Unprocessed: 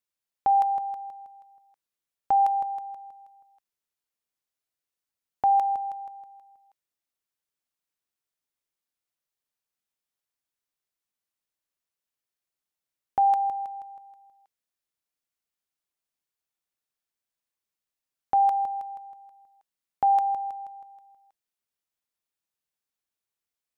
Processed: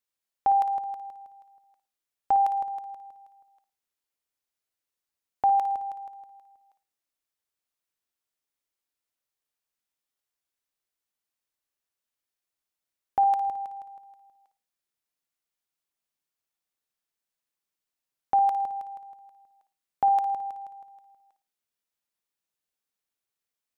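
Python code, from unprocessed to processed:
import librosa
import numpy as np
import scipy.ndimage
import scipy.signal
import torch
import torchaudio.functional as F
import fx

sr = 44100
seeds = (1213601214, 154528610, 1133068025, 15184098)

y = fx.peak_eq(x, sr, hz=fx.steps((0.0, 150.0), (13.48, 64.0)), db=-4.5, octaves=0.84)
y = fx.room_flutter(y, sr, wall_m=9.6, rt60_s=0.31)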